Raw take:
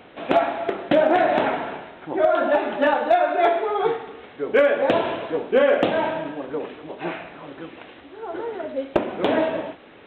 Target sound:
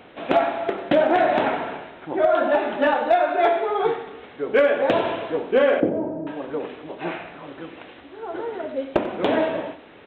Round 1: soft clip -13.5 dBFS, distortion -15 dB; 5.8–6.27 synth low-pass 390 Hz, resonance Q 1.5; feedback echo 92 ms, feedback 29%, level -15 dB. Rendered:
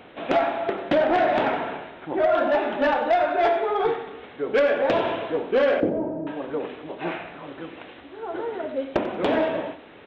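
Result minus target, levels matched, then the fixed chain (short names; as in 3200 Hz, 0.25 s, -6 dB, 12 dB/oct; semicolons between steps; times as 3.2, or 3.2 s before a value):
soft clip: distortion +16 dB
soft clip -3.5 dBFS, distortion -32 dB; 5.8–6.27 synth low-pass 390 Hz, resonance Q 1.5; feedback echo 92 ms, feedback 29%, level -15 dB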